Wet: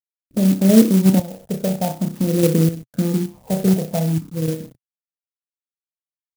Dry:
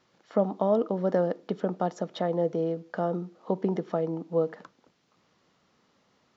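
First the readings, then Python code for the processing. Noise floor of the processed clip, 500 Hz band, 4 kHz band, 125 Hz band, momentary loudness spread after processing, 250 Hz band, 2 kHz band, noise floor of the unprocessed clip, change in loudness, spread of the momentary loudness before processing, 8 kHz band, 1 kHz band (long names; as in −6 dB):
below −85 dBFS, +3.0 dB, +15.5 dB, +16.0 dB, 12 LU, +15.0 dB, +8.0 dB, −69 dBFS, +10.5 dB, 6 LU, can't be measured, +0.5 dB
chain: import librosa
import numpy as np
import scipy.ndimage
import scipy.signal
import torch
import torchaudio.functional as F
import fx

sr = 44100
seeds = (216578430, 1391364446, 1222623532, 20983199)

p1 = fx.fade_in_head(x, sr, length_s=0.75)
p2 = scipy.signal.sosfilt(scipy.signal.butter(2, 51.0, 'highpass', fs=sr, output='sos'), p1)
p3 = fx.env_flanger(p2, sr, rest_ms=3.7, full_db=-25.0)
p4 = fx.room_flutter(p3, sr, wall_m=5.4, rt60_s=0.41)
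p5 = fx.level_steps(p4, sr, step_db=12)
p6 = p4 + F.gain(torch.from_numpy(p5), 1.0).numpy()
p7 = fx.chopper(p6, sr, hz=0.67, depth_pct=65, duty_pct=80)
p8 = fx.quant_dither(p7, sr, seeds[0], bits=8, dither='none')
p9 = fx.tilt_shelf(p8, sr, db=8.5, hz=1400.0)
p10 = fx.phaser_stages(p9, sr, stages=6, low_hz=290.0, high_hz=1100.0, hz=0.47, feedback_pct=25)
p11 = fx.graphic_eq(p10, sr, hz=(125, 250, 2000), db=(10, 4, -6))
p12 = fx.env_lowpass(p11, sr, base_hz=340.0, full_db=-22.0)
p13 = fx.clock_jitter(p12, sr, seeds[1], jitter_ms=0.093)
y = F.gain(torch.from_numpy(p13), -1.0).numpy()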